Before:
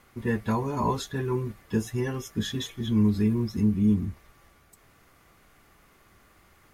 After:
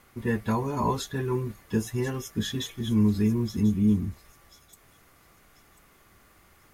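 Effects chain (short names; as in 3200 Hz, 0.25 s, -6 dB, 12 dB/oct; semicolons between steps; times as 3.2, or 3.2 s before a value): high shelf 8700 Hz +4.5 dB; on a send: thin delay 1.04 s, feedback 32%, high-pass 5400 Hz, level -10 dB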